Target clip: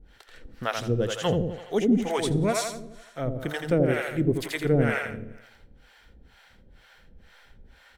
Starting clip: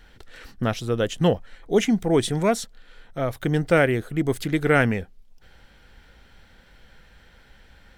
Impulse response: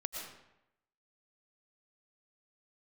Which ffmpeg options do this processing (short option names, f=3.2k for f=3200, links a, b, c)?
-filter_complex "[0:a]aecho=1:1:84|168|252|336|420|504|588|672:0.562|0.321|0.183|0.104|0.0594|0.0338|0.0193|0.011,acrossover=split=530[a][b];[a]aeval=exprs='val(0)*(1-1/2+1/2*cos(2*PI*2.1*n/s))':c=same[c];[b]aeval=exprs='val(0)*(1-1/2-1/2*cos(2*PI*2.1*n/s))':c=same[d];[c][d]amix=inputs=2:normalize=0,asplit=2[e][f];[1:a]atrim=start_sample=2205[g];[f][g]afir=irnorm=-1:irlink=0,volume=-20.5dB[h];[e][h]amix=inputs=2:normalize=0"